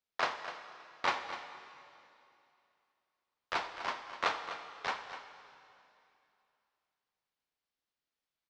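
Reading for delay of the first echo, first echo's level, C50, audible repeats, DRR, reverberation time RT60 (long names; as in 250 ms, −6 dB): 86 ms, −18.0 dB, 7.0 dB, 2, 6.5 dB, 2.7 s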